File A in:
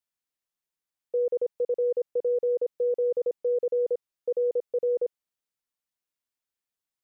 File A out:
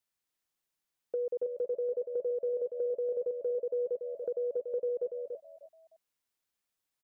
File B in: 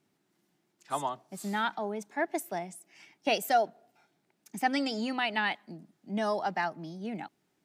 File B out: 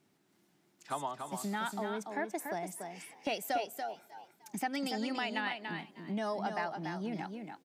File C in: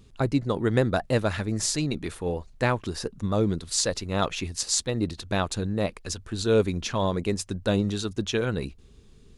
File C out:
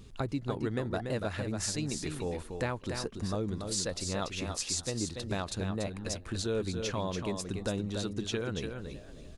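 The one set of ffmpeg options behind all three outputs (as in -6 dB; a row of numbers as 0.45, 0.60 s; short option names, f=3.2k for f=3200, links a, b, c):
-filter_complex "[0:a]asplit=2[a][b];[b]asplit=2[c][d];[c]adelay=306,afreqshift=81,volume=-24dB[e];[d]adelay=612,afreqshift=162,volume=-32.4dB[f];[e][f]amix=inputs=2:normalize=0[g];[a][g]amix=inputs=2:normalize=0,acompressor=threshold=-39dB:ratio=2.5,asplit=2[h][i];[i]aecho=0:1:287:0.501[j];[h][j]amix=inputs=2:normalize=0,volume=2.5dB"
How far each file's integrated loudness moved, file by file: -6.5, -5.5, -7.5 LU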